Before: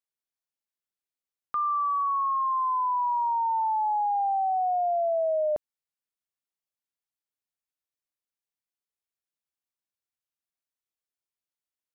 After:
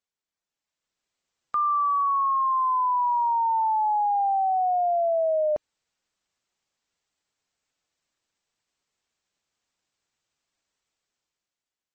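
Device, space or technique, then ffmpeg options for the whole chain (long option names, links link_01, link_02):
low-bitrate web radio: -af "dynaudnorm=framelen=200:gausssize=9:maxgain=10.5dB,alimiter=limit=-23dB:level=0:latency=1:release=18,volume=3.5dB" -ar 44100 -c:a libmp3lame -b:a 32k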